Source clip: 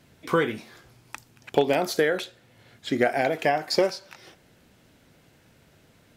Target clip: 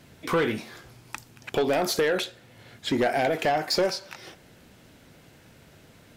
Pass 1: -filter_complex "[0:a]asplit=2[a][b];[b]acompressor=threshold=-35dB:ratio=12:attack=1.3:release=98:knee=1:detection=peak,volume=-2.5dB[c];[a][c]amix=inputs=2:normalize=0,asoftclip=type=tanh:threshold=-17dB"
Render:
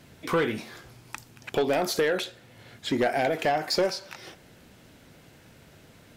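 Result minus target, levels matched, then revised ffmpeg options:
compressor: peak gain reduction +9.5 dB
-filter_complex "[0:a]asplit=2[a][b];[b]acompressor=threshold=-24.5dB:ratio=12:attack=1.3:release=98:knee=1:detection=peak,volume=-2.5dB[c];[a][c]amix=inputs=2:normalize=0,asoftclip=type=tanh:threshold=-17dB"

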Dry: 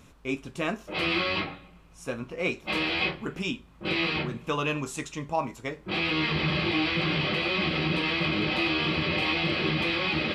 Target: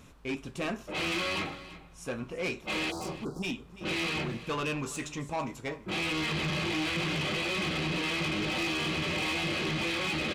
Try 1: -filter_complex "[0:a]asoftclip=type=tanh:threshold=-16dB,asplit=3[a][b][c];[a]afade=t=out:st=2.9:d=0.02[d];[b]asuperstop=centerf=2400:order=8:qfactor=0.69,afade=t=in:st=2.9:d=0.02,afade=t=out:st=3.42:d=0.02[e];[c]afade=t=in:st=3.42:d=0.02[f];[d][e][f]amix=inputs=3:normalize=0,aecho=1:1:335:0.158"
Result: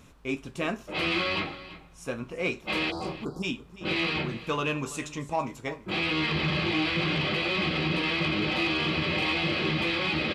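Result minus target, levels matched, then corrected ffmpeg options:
soft clip: distortion -15 dB
-filter_complex "[0:a]asoftclip=type=tanh:threshold=-27.5dB,asplit=3[a][b][c];[a]afade=t=out:st=2.9:d=0.02[d];[b]asuperstop=centerf=2400:order=8:qfactor=0.69,afade=t=in:st=2.9:d=0.02,afade=t=out:st=3.42:d=0.02[e];[c]afade=t=in:st=3.42:d=0.02[f];[d][e][f]amix=inputs=3:normalize=0,aecho=1:1:335:0.158"

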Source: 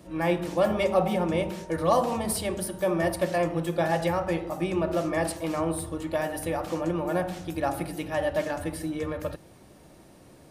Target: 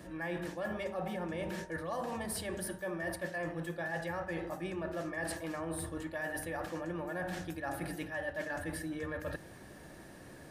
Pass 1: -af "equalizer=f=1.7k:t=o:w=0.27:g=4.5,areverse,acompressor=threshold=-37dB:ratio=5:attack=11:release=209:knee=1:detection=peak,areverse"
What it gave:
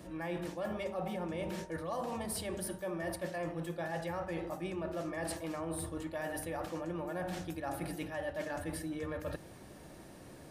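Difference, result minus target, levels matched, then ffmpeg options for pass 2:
2000 Hz band -5.0 dB
-af "equalizer=f=1.7k:t=o:w=0.27:g=13,areverse,acompressor=threshold=-37dB:ratio=5:attack=11:release=209:knee=1:detection=peak,areverse"

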